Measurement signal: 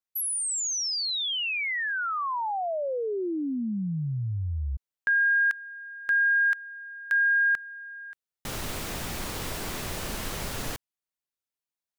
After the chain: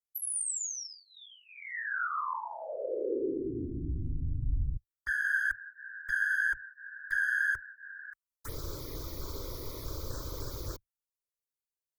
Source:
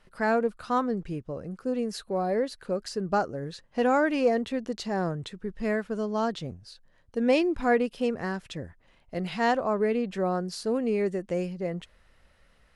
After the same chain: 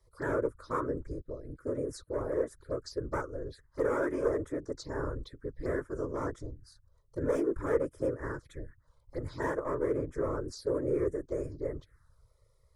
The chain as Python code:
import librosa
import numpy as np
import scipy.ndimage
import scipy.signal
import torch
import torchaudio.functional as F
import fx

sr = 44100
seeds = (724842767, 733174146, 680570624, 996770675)

y = fx.clip_asym(x, sr, top_db=-24.0, bottom_db=-17.0)
y = fx.whisperise(y, sr, seeds[0])
y = fx.env_phaser(y, sr, low_hz=250.0, high_hz=4300.0, full_db=-27.0)
y = fx.low_shelf(y, sr, hz=94.0, db=6.5)
y = fx.fixed_phaser(y, sr, hz=750.0, stages=6)
y = y * librosa.db_to_amplitude(-2.5)